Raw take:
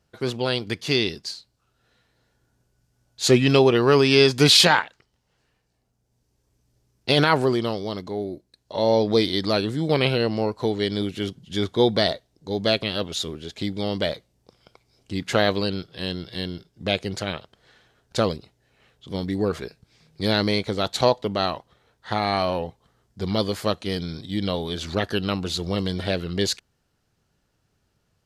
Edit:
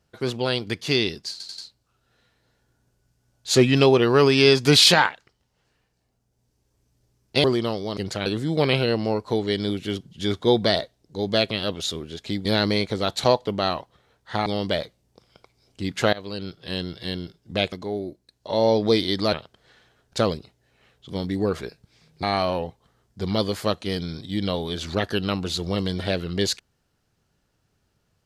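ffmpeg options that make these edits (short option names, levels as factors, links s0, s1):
-filter_complex "[0:a]asplit=13[s0][s1][s2][s3][s4][s5][s6][s7][s8][s9][s10][s11][s12];[s0]atrim=end=1.402[s13];[s1]atrim=start=1.308:end=1.402[s14];[s2]atrim=start=1.308:end=1.402[s15];[s3]atrim=start=1.308:end=7.172[s16];[s4]atrim=start=7.438:end=7.972[s17];[s5]atrim=start=17.028:end=17.322[s18];[s6]atrim=start=9.578:end=13.772[s19];[s7]atrim=start=20.218:end=22.232[s20];[s8]atrim=start=13.768:end=15.44,asetpts=PTS-STARTPTS,afade=t=out:st=1.668:d=0.004:c=hsin:silence=0.0891251[s21];[s9]atrim=start=15.44:end=17.032,asetpts=PTS-STARTPTS,afade=t=in:d=0.56:silence=0.0891251[s22];[s10]atrim=start=7.968:end=9.582[s23];[s11]atrim=start=17.318:end=20.222[s24];[s12]atrim=start=22.228[s25];[s13][s14]acrossfade=d=0.004:c1=hsin:c2=hsin[s26];[s26][s15]acrossfade=d=0.004:c1=hsin:c2=hsin[s27];[s27][s16]acrossfade=d=0.004:c1=hsin:c2=hsin[s28];[s28][s17]acrossfade=d=0.004:c1=hsin:c2=hsin[s29];[s29][s18]acrossfade=d=0.004:c1=hsin:c2=hsin[s30];[s30][s19]acrossfade=d=0.004:c1=hsin:c2=hsin[s31];[s31][s20]acrossfade=d=0.004:c1=hsin:c2=hsin[s32];[s21][s22]concat=n=2:v=0:a=1[s33];[s32][s33]acrossfade=d=0.004:c1=hsin:c2=hsin[s34];[s34][s23]acrossfade=d=0.004:c1=hsin:c2=hsin[s35];[s35][s24]acrossfade=d=0.004:c1=hsin:c2=hsin[s36];[s36][s25]acrossfade=d=0.004:c1=hsin:c2=hsin"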